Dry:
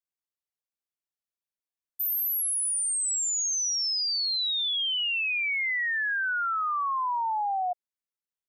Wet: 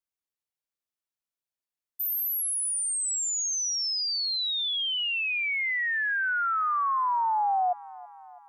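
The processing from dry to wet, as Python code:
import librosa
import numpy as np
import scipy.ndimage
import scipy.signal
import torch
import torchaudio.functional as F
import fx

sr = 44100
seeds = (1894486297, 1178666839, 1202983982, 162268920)

y = fx.rider(x, sr, range_db=10, speed_s=0.5)
y = fx.echo_wet_lowpass(y, sr, ms=328, feedback_pct=59, hz=1200.0, wet_db=-19)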